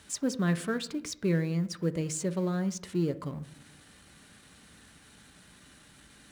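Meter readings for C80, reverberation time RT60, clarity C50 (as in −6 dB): 20.0 dB, 0.75 s, 17.0 dB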